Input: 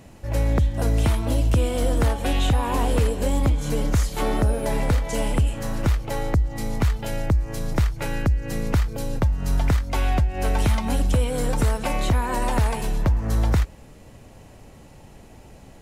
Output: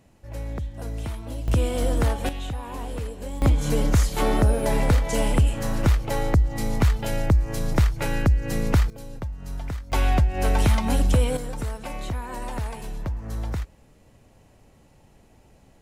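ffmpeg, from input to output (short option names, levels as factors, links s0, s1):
-af "asetnsamples=n=441:p=0,asendcmd='1.48 volume volume -1.5dB;2.29 volume volume -11dB;3.42 volume volume 1.5dB;8.9 volume volume -11dB;9.92 volume volume 1dB;11.37 volume volume -9dB',volume=0.282"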